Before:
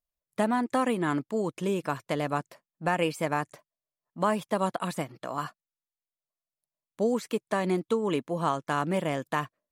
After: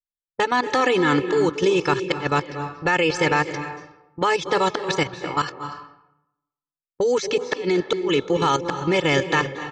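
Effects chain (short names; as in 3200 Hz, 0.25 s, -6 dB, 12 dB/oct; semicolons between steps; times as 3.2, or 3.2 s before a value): gate -44 dBFS, range -19 dB; AGC gain up to 9.5 dB; elliptic low-pass 6200 Hz, stop band 60 dB; high shelf 3300 Hz +10 dB; comb 2.3 ms, depth 98%; dynamic EQ 730 Hz, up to -5 dB, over -28 dBFS, Q 0.9; level quantiser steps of 12 dB; flipped gate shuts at -12 dBFS, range -32 dB; low-pass opened by the level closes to 320 Hz, open at -26 dBFS; reverb RT60 0.85 s, pre-delay 0.225 s, DRR 10 dB; gain +5.5 dB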